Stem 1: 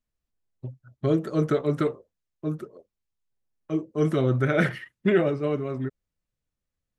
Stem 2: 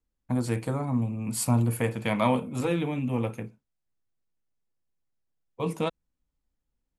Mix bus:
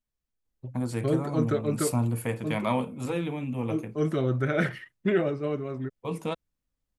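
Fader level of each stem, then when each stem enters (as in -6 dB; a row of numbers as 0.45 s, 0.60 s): -3.5 dB, -3.0 dB; 0.00 s, 0.45 s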